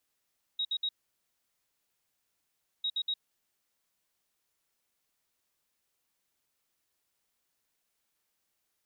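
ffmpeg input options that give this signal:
-f lavfi -i "aevalsrc='0.0376*sin(2*PI*3800*t)*clip(min(mod(mod(t,2.25),0.12),0.06-mod(mod(t,2.25),0.12))/0.005,0,1)*lt(mod(t,2.25),0.36)':d=4.5:s=44100"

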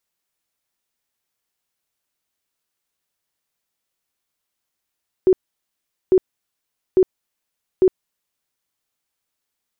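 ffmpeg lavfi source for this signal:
-f lavfi -i "aevalsrc='0.355*sin(2*PI*373*mod(t,0.85))*lt(mod(t,0.85),22/373)':d=3.4:s=44100"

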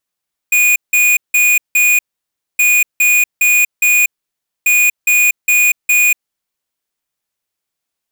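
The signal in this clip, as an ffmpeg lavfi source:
-f lavfi -i "aevalsrc='0.299*(2*lt(mod(2460*t,1),0.5)-1)*clip(min(mod(mod(t,2.07),0.41),0.24-mod(mod(t,2.07),0.41))/0.005,0,1)*lt(mod(t,2.07),1.64)':d=6.21:s=44100"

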